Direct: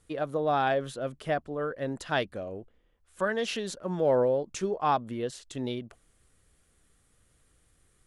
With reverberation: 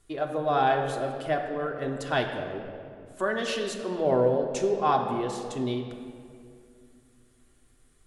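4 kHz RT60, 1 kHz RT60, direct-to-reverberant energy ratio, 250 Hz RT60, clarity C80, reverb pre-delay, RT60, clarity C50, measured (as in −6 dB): 1.4 s, 2.1 s, 2.0 dB, 3.1 s, 7.0 dB, 3 ms, 2.4 s, 5.5 dB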